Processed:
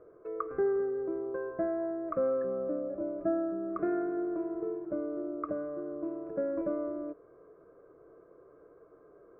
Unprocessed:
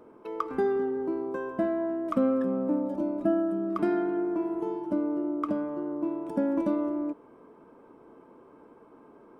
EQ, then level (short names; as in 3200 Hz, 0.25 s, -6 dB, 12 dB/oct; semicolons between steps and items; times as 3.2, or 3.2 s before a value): LPF 1300 Hz 12 dB/oct; fixed phaser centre 890 Hz, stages 6; 0.0 dB